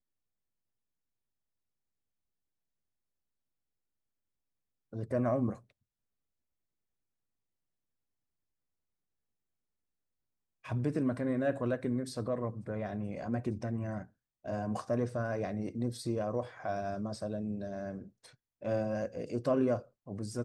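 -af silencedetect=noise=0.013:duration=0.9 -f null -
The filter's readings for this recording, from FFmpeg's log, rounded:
silence_start: 0.00
silence_end: 4.93 | silence_duration: 4.93
silence_start: 5.53
silence_end: 10.66 | silence_duration: 5.13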